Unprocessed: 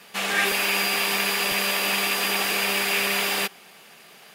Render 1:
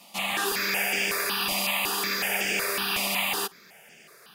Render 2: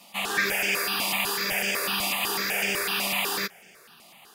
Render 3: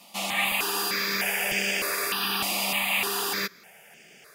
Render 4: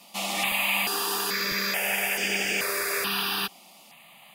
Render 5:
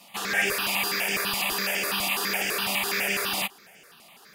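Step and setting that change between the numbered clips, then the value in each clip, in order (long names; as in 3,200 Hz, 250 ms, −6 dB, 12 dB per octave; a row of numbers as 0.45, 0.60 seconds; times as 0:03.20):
step-sequenced phaser, speed: 5.4, 8, 3.3, 2.3, 12 Hertz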